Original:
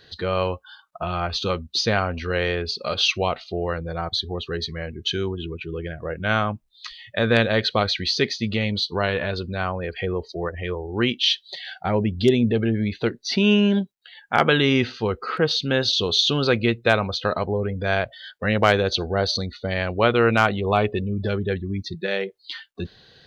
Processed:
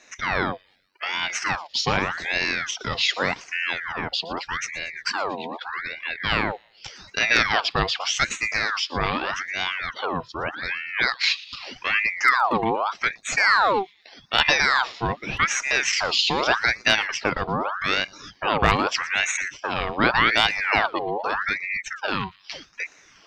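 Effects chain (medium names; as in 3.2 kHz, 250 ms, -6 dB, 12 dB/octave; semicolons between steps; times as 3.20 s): time-frequency box 0.52–1.03 s, 510–5300 Hz -20 dB; feedback echo behind a high-pass 117 ms, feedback 51%, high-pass 2.4 kHz, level -18 dB; ring modulator with a swept carrier 1.4 kHz, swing 60%, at 0.83 Hz; trim +1.5 dB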